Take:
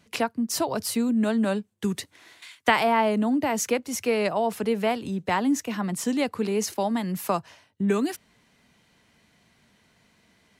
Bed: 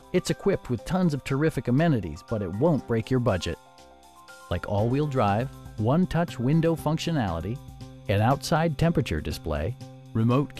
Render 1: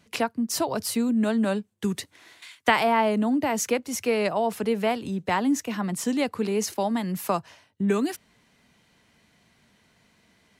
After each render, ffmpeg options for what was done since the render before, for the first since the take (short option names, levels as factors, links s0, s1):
-af anull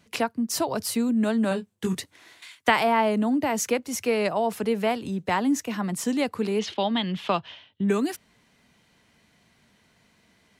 -filter_complex "[0:a]asettb=1/sr,asplit=3[s0][s1][s2];[s0]atrim=end=1.494[s3];[s1]atrim=start=1.49:end=1.98,asetpts=PTS-STARTPTS,afade=t=in:d=0.004:c=qsin,afade=t=out:st=0.486:d=0.004:c=qsin,asplit=2[s4][s5];[s5]adelay=22,volume=0.562[s6];[s4][s6]amix=inputs=2:normalize=0,atrim=end_sample=21609[s7];[s2]atrim=start=1.976[s8];[s3][s7]acrossfade=d=0.004:c1=hsin:c2=qsin[s9];[s9][s8]acrossfade=d=0.004:c1=qsin:c2=hsin,asettb=1/sr,asplit=3[s10][s11][s12];[s10]atrim=end=6.594[s13];[s11]atrim=start=6.59:end=7.84,asetpts=PTS-STARTPTS,afade=t=in:d=0.004:c=qsin,afade=t=out:st=1.246:d=0.004:c=qsin,lowpass=f=3300:t=q:w=6.3[s14];[s12]atrim=start=7.836[s15];[s13][s14]acrossfade=d=0.004:c1=hsin:c2=qsin[s16];[s16][s15]acrossfade=d=0.004:c1=qsin:c2=hsin"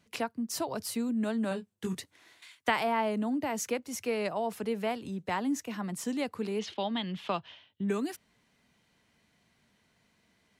-af "volume=0.422"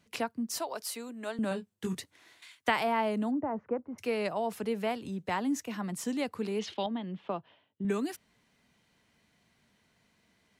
-filter_complex "[0:a]asettb=1/sr,asplit=3[s0][s1][s2];[s0]atrim=end=0.584[s3];[s1]atrim=start=0.58:end=1.39,asetpts=PTS-STARTPTS,afade=t=in:d=0.004:c=qsin,afade=t=out:st=0.806:d=0.004:c=qsin,highpass=490[s4];[s2]atrim=start=1.386[s5];[s3][s4]acrossfade=d=0.004:c1=hsin:c2=qsin[s6];[s6][s5]acrossfade=d=0.004:c1=qsin:c2=hsin,asplit=3[s7][s8][s9];[s7]afade=t=out:st=3.3:d=0.02[s10];[s8]lowpass=f=1300:w=0.5412,lowpass=f=1300:w=1.3066,afade=t=in:st=3.3:d=0.02,afade=t=out:st=3.98:d=0.02[s11];[s9]afade=t=in:st=3.98:d=0.02[s12];[s10][s11][s12]amix=inputs=3:normalize=0,asettb=1/sr,asplit=3[s13][s14][s15];[s13]atrim=end=6.864[s16];[s14]atrim=start=6.86:end=7.85,asetpts=PTS-STARTPTS,afade=t=in:d=0.004:c=qsin,afade=t=out:st=0.986:d=0.004:c=qsin,bandpass=f=360:t=q:w=0.59[s17];[s15]atrim=start=7.846[s18];[s16][s17]acrossfade=d=0.004:c1=hsin:c2=qsin[s19];[s19][s18]acrossfade=d=0.004:c1=qsin:c2=hsin"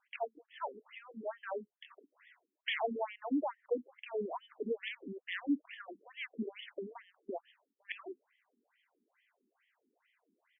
-af "aresample=16000,aeval=exprs='(mod(11.2*val(0)+1,2)-1)/11.2':c=same,aresample=44100,afftfilt=real='re*between(b*sr/1024,290*pow(2500/290,0.5+0.5*sin(2*PI*2.3*pts/sr))/1.41,290*pow(2500/290,0.5+0.5*sin(2*PI*2.3*pts/sr))*1.41)':imag='im*between(b*sr/1024,290*pow(2500/290,0.5+0.5*sin(2*PI*2.3*pts/sr))/1.41,290*pow(2500/290,0.5+0.5*sin(2*PI*2.3*pts/sr))*1.41)':win_size=1024:overlap=0.75"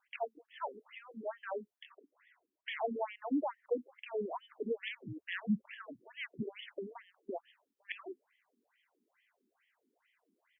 -filter_complex "[0:a]asettb=1/sr,asplit=3[s0][s1][s2];[s0]atrim=end=1.894[s3];[s1]atrim=start=1.89:end=2.88,asetpts=PTS-STARTPTS,afade=t=in:d=0.004:c=qsin,afade=t=out:st=0.986:d=0.004:c=qsin,highshelf=f=2300:g=-11.5[s4];[s2]atrim=start=2.876[s5];[s3][s4]acrossfade=d=0.004:c1=hsin:c2=qsin[s6];[s6][s5]acrossfade=d=0.004:c1=qsin:c2=hsin,asplit=3[s7][s8][s9];[s7]afade=t=out:st=5.03:d=0.02[s10];[s8]afreqshift=-75,afade=t=in:st=5.03:d=0.02,afade=t=out:st=6.39:d=0.02[s11];[s9]afade=t=in:st=6.39:d=0.02[s12];[s10][s11][s12]amix=inputs=3:normalize=0"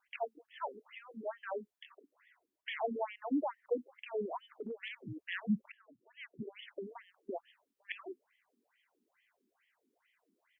-filter_complex "[0:a]asettb=1/sr,asplit=3[s0][s1][s2];[s0]atrim=end=4.434[s3];[s1]atrim=start=4.43:end=5.01,asetpts=PTS-STARTPTS,afade=t=in:d=0.004:c=qsin,afade=t=out:st=0.576:d=0.004:c=qsin,acompressor=threshold=0.0126:ratio=6:attack=3.2:release=140:knee=1:detection=peak[s4];[s2]atrim=start=5.006[s5];[s3][s4]acrossfade=d=0.004:c1=hsin:c2=qsin[s6];[s6][s5]acrossfade=d=0.004:c1=qsin:c2=hsin,asplit=2[s7][s8];[s7]atrim=end=5.72,asetpts=PTS-STARTPTS,afade=t=out:st=5.716:d=0.004:c=hsin:silence=0.0794328[s9];[s8]atrim=start=5.72,asetpts=PTS-STARTPTS,afade=t=in:d=1.25:silence=0.0794328[s10];[s9][s10]concat=n=2:v=0:a=1"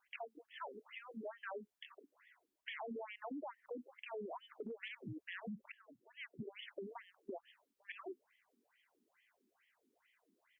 -af "alimiter=level_in=3.35:limit=0.0631:level=0:latency=1:release=68,volume=0.299,acompressor=threshold=0.00708:ratio=4"